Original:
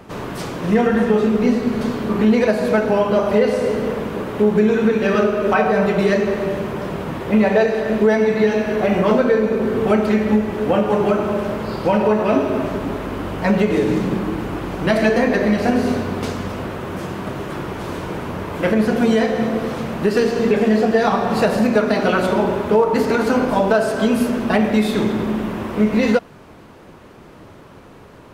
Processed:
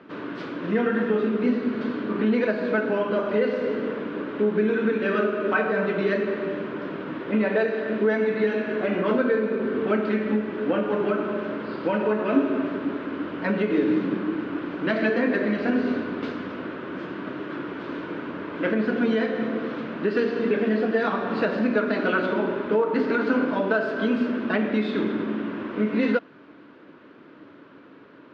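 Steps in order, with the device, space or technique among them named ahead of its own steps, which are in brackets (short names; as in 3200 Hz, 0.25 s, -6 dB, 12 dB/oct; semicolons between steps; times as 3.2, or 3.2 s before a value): kitchen radio (speaker cabinet 210–3900 Hz, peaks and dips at 290 Hz +10 dB, 780 Hz -8 dB, 1500 Hz +6 dB); gain -7 dB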